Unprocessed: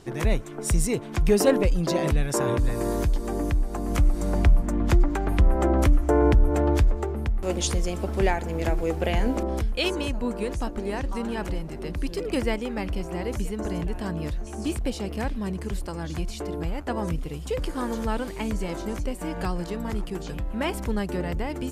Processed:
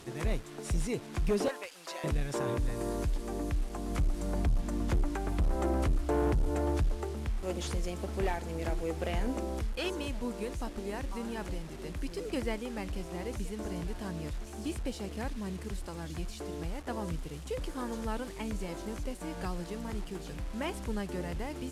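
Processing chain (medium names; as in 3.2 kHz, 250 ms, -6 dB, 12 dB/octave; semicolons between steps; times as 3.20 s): one-bit delta coder 64 kbps, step -36.5 dBFS; 1.48–2.04 s: high-pass 950 Hz 12 dB/octave; one-sided clip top -17 dBFS, bottom -14 dBFS; trim -8 dB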